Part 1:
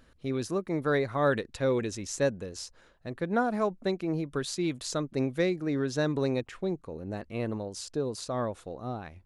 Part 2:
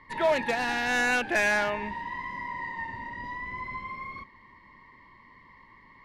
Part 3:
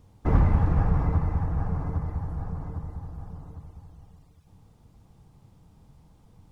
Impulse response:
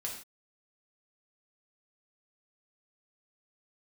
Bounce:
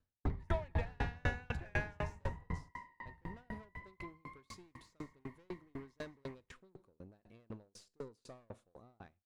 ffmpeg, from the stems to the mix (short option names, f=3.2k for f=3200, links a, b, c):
-filter_complex "[0:a]agate=range=-17dB:threshold=-52dB:ratio=16:detection=peak,aeval=exprs='(tanh(31.6*val(0)+0.3)-tanh(0.3))/31.6':c=same,volume=-8dB,asplit=4[a][b][c][d];[b]volume=-12dB[e];[c]volume=-23.5dB[f];[1:a]lowpass=f=3.6k:p=1,acompressor=mode=upward:threshold=-37dB:ratio=2.5,adelay=300,volume=-7dB,asplit=2[g][h];[h]volume=-14dB[i];[2:a]acrossover=split=190[j][k];[k]acompressor=threshold=-37dB:ratio=6[l];[j][l]amix=inputs=2:normalize=0,volume=-2dB[m];[d]apad=whole_len=287415[n];[m][n]sidechaingate=range=-24dB:threshold=-53dB:ratio=16:detection=peak[o];[a][o]amix=inputs=2:normalize=0,alimiter=limit=-22dB:level=0:latency=1:release=114,volume=0dB[p];[3:a]atrim=start_sample=2205[q];[e][q]afir=irnorm=-1:irlink=0[r];[f][i]amix=inputs=2:normalize=0,aecho=0:1:200:1[s];[g][p][r][s]amix=inputs=4:normalize=0,acrossover=split=3700[t][u];[u]acompressor=threshold=-52dB:ratio=4:attack=1:release=60[v];[t][v]amix=inputs=2:normalize=0,aeval=exprs='val(0)*pow(10,-37*if(lt(mod(4*n/s,1),2*abs(4)/1000),1-mod(4*n/s,1)/(2*abs(4)/1000),(mod(4*n/s,1)-2*abs(4)/1000)/(1-2*abs(4)/1000))/20)':c=same"